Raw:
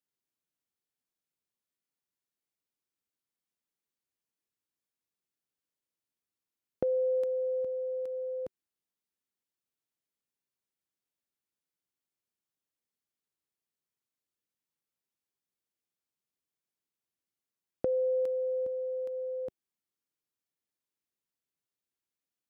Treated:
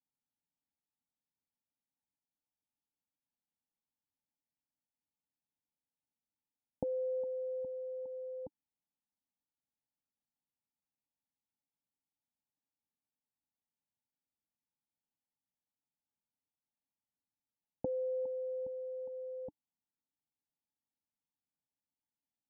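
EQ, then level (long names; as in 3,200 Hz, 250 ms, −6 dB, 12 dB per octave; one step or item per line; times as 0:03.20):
formant resonators in series u
phaser with its sweep stopped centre 840 Hz, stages 4
+14.0 dB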